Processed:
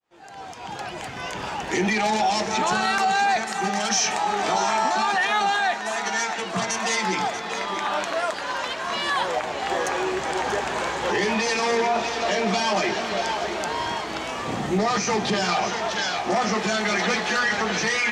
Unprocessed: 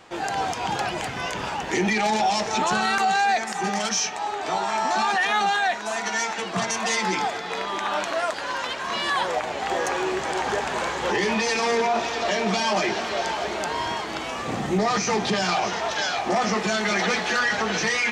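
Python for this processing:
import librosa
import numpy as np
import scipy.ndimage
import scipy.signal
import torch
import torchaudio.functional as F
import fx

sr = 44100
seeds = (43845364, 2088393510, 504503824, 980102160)

y = fx.fade_in_head(x, sr, length_s=1.76)
y = y + 10.0 ** (-12.5 / 20.0) * np.pad(y, (int(636 * sr / 1000.0), 0))[:len(y)]
y = fx.env_flatten(y, sr, amount_pct=50, at=(3.89, 4.88), fade=0.02)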